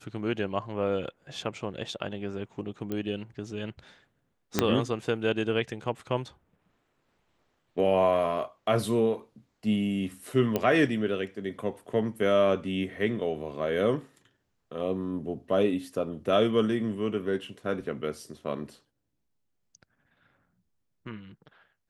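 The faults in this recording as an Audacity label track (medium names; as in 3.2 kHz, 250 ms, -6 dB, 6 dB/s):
2.920000	2.920000	pop -20 dBFS
4.590000	4.590000	pop -7 dBFS
10.560000	10.560000	pop -13 dBFS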